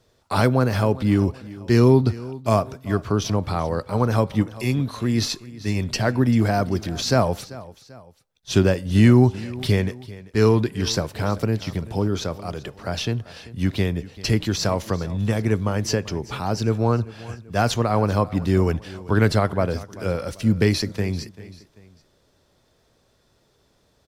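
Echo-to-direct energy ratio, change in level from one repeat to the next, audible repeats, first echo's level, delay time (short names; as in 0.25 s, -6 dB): -17.5 dB, -7.0 dB, 2, -18.5 dB, 0.39 s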